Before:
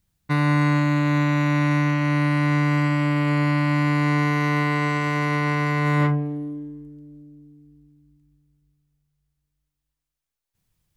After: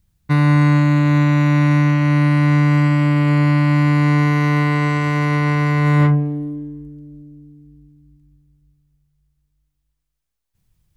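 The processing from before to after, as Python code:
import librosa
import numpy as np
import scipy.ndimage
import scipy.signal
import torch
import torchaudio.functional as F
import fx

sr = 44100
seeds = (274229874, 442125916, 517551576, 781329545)

y = fx.low_shelf(x, sr, hz=160.0, db=10.0)
y = y * 10.0 ** (2.0 / 20.0)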